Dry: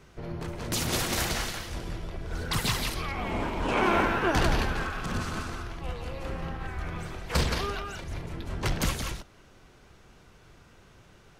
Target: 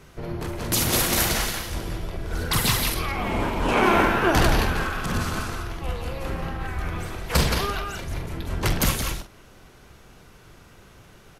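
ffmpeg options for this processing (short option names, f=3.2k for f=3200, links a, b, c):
-filter_complex "[0:a]equalizer=f=12k:t=o:w=0.5:g=9.5,asplit=2[a][b];[b]adelay=46,volume=-10dB[c];[a][c]amix=inputs=2:normalize=0,volume=5dB"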